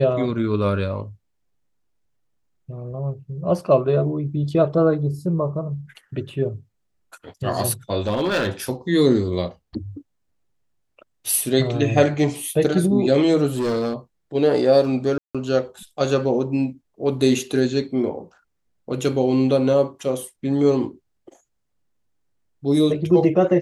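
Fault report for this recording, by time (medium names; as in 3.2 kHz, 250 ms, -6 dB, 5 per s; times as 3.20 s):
8.07–8.49 s: clipped -16.5 dBFS
13.55–13.94 s: clipped -19 dBFS
15.18–15.35 s: dropout 166 ms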